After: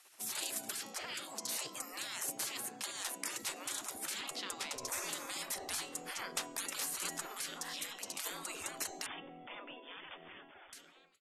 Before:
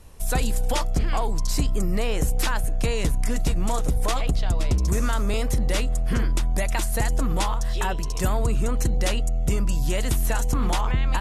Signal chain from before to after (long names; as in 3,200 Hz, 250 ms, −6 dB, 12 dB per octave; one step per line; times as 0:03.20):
fade-out on the ending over 2.29 s
hum removal 274.7 Hz, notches 30
gate on every frequency bin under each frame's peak −30 dB weak
0:09.06–0:10.73: linear-phase brick-wall low-pass 3,600 Hz
level −2 dB